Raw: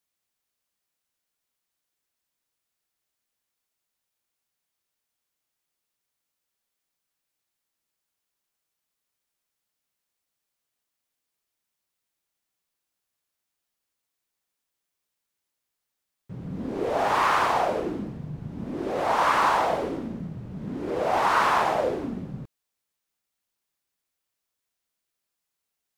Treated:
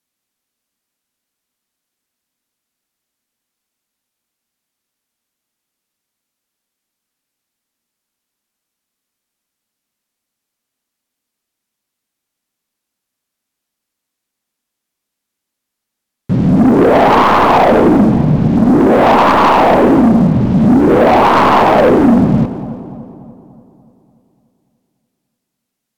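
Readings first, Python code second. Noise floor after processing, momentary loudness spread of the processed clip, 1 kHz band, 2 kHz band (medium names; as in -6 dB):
-79 dBFS, 5 LU, +13.5 dB, +11.0 dB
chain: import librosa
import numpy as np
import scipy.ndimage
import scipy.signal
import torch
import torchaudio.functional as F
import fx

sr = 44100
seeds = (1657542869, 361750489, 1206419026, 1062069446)

p1 = fx.tracing_dist(x, sr, depth_ms=0.064)
p2 = fx.rider(p1, sr, range_db=4, speed_s=0.5)
p3 = p1 + (p2 * 10.0 ** (0.0 / 20.0))
p4 = fx.peak_eq(p3, sr, hz=240.0, db=9.5, octaves=0.74)
p5 = fx.env_lowpass_down(p4, sr, base_hz=970.0, full_db=-13.0)
p6 = fx.leveller(p5, sr, passes=3)
p7 = p6 + fx.echo_split(p6, sr, split_hz=990.0, low_ms=291, high_ms=171, feedback_pct=52, wet_db=-14.0, dry=0)
y = p7 * 10.0 ** (3.5 / 20.0)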